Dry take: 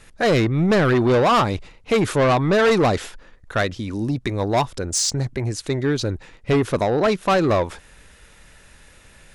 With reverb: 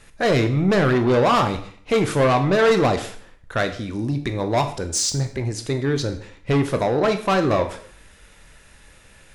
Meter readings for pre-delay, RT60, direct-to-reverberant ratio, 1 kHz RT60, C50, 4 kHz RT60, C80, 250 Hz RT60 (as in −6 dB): 7 ms, 0.55 s, 6.5 dB, 0.55 s, 11.5 dB, 0.55 s, 14.5 dB, 0.60 s